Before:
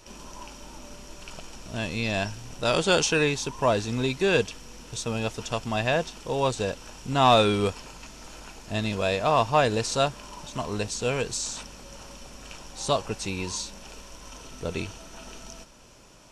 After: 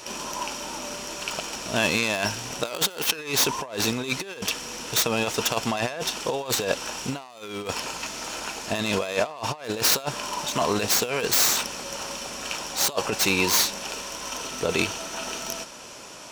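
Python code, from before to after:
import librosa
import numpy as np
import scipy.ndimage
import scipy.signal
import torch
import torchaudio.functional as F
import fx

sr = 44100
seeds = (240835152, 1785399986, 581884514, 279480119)

y = fx.tracing_dist(x, sr, depth_ms=0.2)
y = fx.over_compress(y, sr, threshold_db=-30.0, ratio=-0.5)
y = fx.highpass(y, sr, hz=450.0, slope=6)
y = y * librosa.db_to_amplitude(8.5)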